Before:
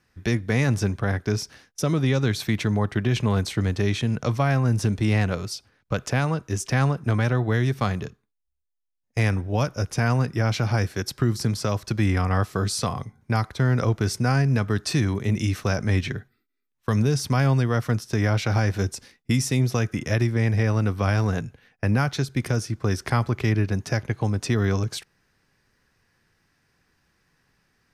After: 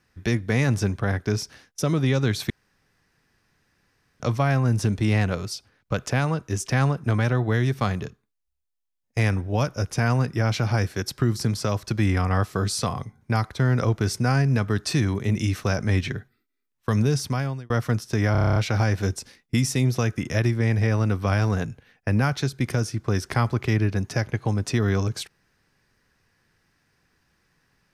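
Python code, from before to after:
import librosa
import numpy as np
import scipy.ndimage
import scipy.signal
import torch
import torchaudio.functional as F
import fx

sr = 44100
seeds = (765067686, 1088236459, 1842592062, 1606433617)

y = fx.edit(x, sr, fx.room_tone_fill(start_s=2.5, length_s=1.7),
    fx.fade_out_span(start_s=17.15, length_s=0.55),
    fx.stutter(start_s=18.32, slice_s=0.03, count=9), tone=tone)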